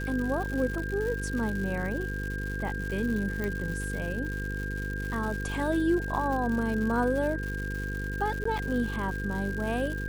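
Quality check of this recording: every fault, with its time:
buzz 50 Hz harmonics 10 -34 dBFS
crackle 220/s -34 dBFS
tone 1600 Hz -36 dBFS
3.44 pop -19 dBFS
8.44–8.45 gap 14 ms

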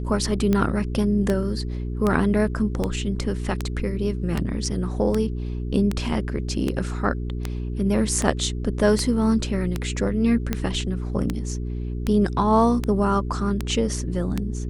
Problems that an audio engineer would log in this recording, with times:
hum 60 Hz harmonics 7 -28 dBFS
tick 78 rpm -10 dBFS

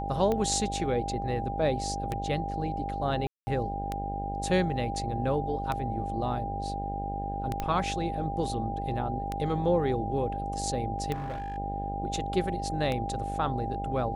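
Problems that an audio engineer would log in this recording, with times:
buzz 50 Hz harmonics 17 -36 dBFS
tick 33 1/3 rpm -17 dBFS
tone 800 Hz -34 dBFS
3.27–3.47 gap 0.2 s
7.6 pop -17 dBFS
11.13–11.58 clipped -31.5 dBFS

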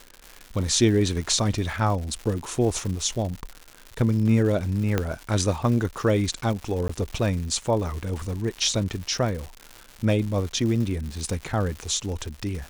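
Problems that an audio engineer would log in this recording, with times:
crackle 210/s -31 dBFS
4.98 pop -9 dBFS
6.88–6.89 gap 14 ms

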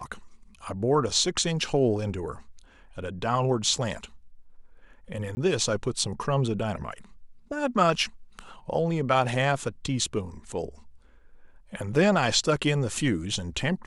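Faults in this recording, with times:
5.35–5.37 gap 20 ms

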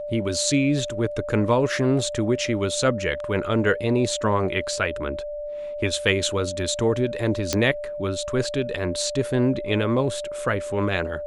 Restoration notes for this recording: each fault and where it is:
tone 590 Hz -29 dBFS
7.53 pop -6 dBFS

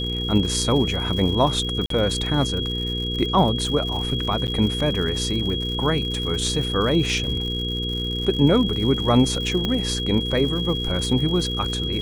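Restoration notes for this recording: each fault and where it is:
crackle 130/s -30 dBFS
hum 60 Hz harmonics 8 -28 dBFS
tone 3300 Hz -27 dBFS
1.86–1.9 gap 43 ms
4.47–4.48 gap 9.5 ms
9.65 pop -11 dBFS

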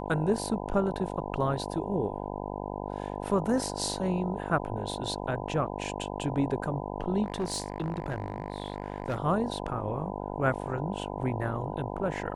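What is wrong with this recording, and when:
buzz 50 Hz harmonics 20 -36 dBFS
7.23–9.18 clipped -26 dBFS

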